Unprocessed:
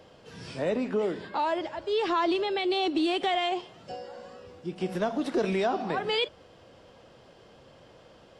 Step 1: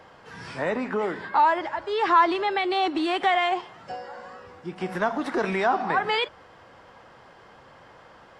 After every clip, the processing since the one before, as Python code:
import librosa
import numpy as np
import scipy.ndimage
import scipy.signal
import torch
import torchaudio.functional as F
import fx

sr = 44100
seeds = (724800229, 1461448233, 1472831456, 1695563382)

y = fx.band_shelf(x, sr, hz=1300.0, db=10.0, octaves=1.7)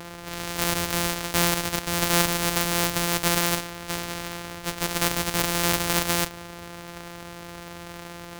y = np.r_[np.sort(x[:len(x) // 256 * 256].reshape(-1, 256), axis=1).ravel(), x[len(x) // 256 * 256:]]
y = fx.spectral_comp(y, sr, ratio=2.0)
y = y * 10.0 ** (6.0 / 20.0)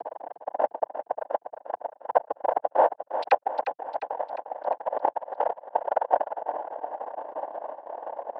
y = fx.sine_speech(x, sr)
y = fx.noise_vocoder(y, sr, seeds[0], bands=8)
y = fx.echo_feedback(y, sr, ms=353, feedback_pct=53, wet_db=-10)
y = y * 10.0 ** (-2.5 / 20.0)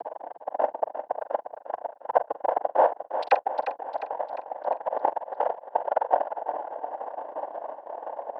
y = fx.doubler(x, sr, ms=44.0, db=-13.0)